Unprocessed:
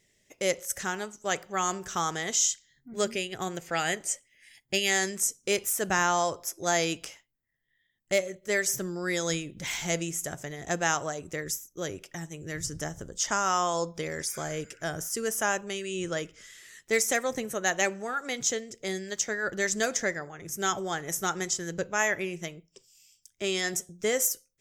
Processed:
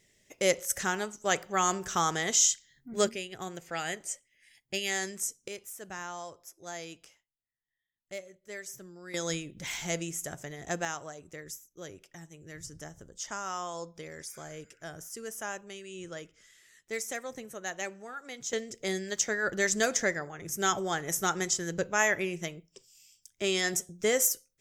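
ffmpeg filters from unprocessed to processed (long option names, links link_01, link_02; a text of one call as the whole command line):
ffmpeg -i in.wav -af "asetnsamples=nb_out_samples=441:pad=0,asendcmd='3.09 volume volume -6dB;5.48 volume volume -15dB;9.14 volume volume -3.5dB;10.85 volume volume -10dB;18.53 volume volume 0.5dB',volume=1.5dB" out.wav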